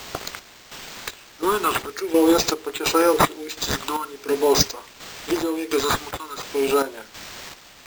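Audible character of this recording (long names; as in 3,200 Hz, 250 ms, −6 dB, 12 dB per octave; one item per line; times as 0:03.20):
phaser sweep stages 6, 0.45 Hz, lowest notch 530–4,400 Hz
a quantiser's noise floor 8 bits, dither triangular
chopped level 1.4 Hz, depth 65%, duty 55%
aliases and images of a low sample rate 11,000 Hz, jitter 0%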